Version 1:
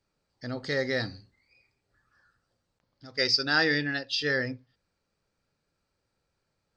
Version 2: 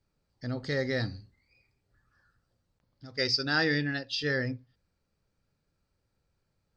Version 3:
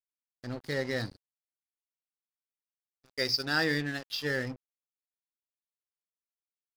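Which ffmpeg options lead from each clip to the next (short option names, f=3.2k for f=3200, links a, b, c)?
-af "lowshelf=f=210:g=10,volume=-3.5dB"
-af "highpass=f=93:p=1,aeval=exprs='sgn(val(0))*max(abs(val(0))-0.00841,0)':c=same"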